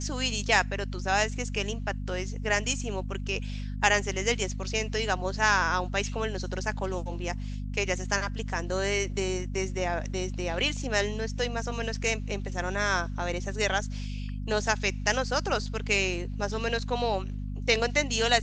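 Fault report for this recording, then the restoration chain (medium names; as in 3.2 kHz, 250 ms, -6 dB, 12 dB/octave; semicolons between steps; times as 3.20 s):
hum 50 Hz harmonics 5 -34 dBFS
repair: de-hum 50 Hz, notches 5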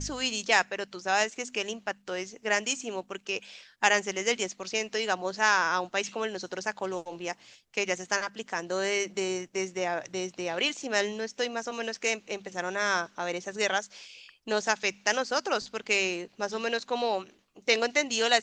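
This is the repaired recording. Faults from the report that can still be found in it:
nothing left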